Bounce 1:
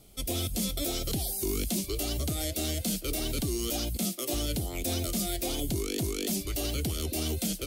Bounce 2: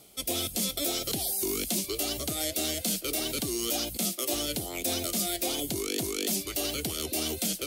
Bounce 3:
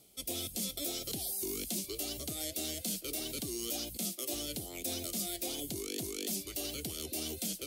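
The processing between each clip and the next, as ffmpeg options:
-af "highpass=f=380:p=1,areverse,acompressor=mode=upward:threshold=-39dB:ratio=2.5,areverse,volume=3.5dB"
-af "equalizer=f=1.2k:w=0.71:g=-6.5,volume=-6.5dB"

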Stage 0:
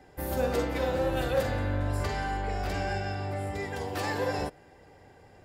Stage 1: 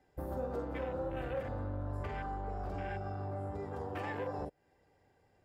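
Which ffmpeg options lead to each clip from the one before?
-af "afwtdn=0.0178,acompressor=threshold=-41dB:ratio=2.5,volume=1dB"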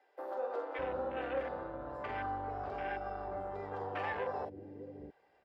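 -filter_complex "[0:a]acrossover=split=300 4600:gain=0.178 1 0.0891[a][b][c];[a][b][c]amix=inputs=3:normalize=0,acrossover=split=360[d][e];[d]adelay=610[f];[f][e]amix=inputs=2:normalize=0,volume=4dB"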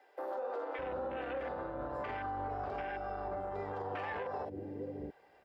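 -af "alimiter=level_in=13dB:limit=-24dB:level=0:latency=1:release=103,volume=-13dB,volume=6dB"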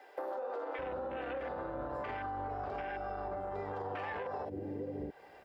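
-af "acompressor=threshold=-45dB:ratio=5,volume=8dB"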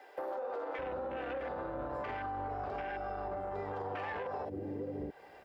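-af "asoftclip=type=tanh:threshold=-28dB,volume=1dB"

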